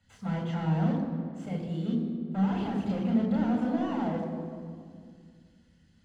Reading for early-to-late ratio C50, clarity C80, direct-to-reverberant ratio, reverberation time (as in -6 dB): 4.0 dB, 5.5 dB, -0.5 dB, 2.1 s